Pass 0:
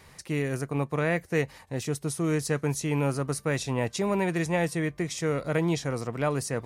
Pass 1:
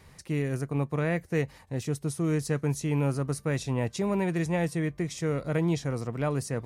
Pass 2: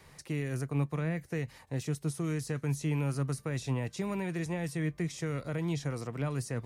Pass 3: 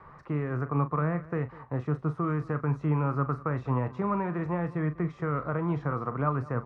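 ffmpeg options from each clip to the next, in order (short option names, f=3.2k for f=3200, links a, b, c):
-af "lowshelf=f=320:g=7,volume=-4.5dB"
-filter_complex "[0:a]acrossover=split=290|1300[a][b][c];[a]flanger=delay=5.8:depth=2.9:regen=59:speed=1:shape=triangular[d];[b]acompressor=threshold=-39dB:ratio=6[e];[c]alimiter=level_in=11dB:limit=-24dB:level=0:latency=1:release=24,volume=-11dB[f];[d][e][f]amix=inputs=3:normalize=0"
-filter_complex "[0:a]lowpass=f=1.2k:t=q:w=4.7,asplit=2[a][b];[b]adelay=40,volume=-12dB[c];[a][c]amix=inputs=2:normalize=0,aecho=1:1:198:0.1,volume=3dB"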